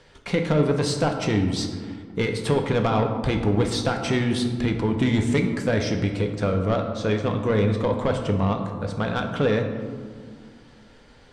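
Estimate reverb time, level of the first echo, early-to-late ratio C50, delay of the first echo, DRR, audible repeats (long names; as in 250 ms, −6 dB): 2.0 s, no echo audible, 7.0 dB, no echo audible, 4.5 dB, no echo audible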